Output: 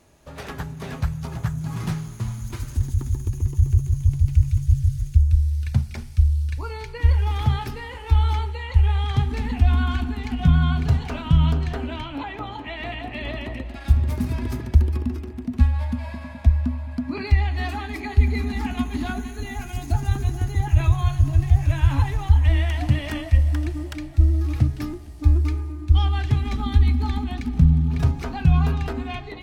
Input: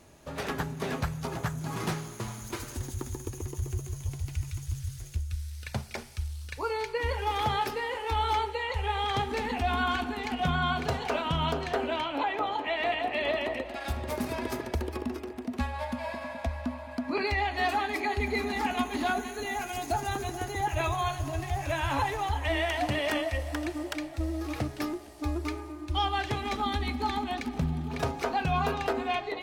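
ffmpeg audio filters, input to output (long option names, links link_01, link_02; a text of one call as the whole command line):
ffmpeg -i in.wav -af "asubboost=boost=11.5:cutoff=150,volume=-1.5dB" out.wav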